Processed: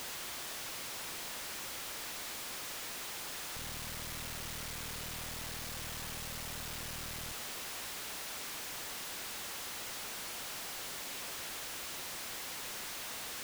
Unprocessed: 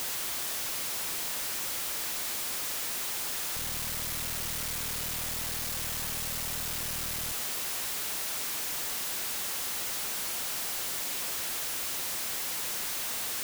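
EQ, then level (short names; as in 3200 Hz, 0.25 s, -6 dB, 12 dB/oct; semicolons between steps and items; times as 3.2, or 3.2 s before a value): high shelf 6900 Hz -8 dB; -4.5 dB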